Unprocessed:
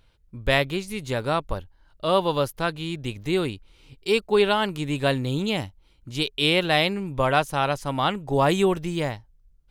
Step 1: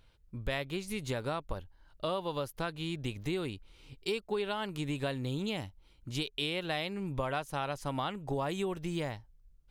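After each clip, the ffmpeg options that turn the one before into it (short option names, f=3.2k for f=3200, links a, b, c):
-af "acompressor=threshold=-28dB:ratio=6,volume=-3dB"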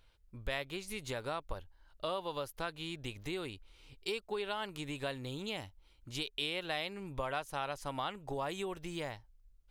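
-af "equalizer=f=170:w=0.6:g=-7.5,volume=-1.5dB"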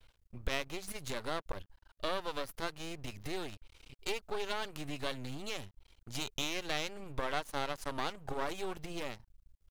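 -af "aeval=exprs='max(val(0),0)':c=same,volume=5dB"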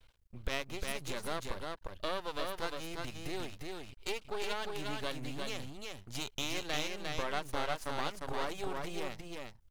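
-af "aecho=1:1:353:0.668,volume=-1dB"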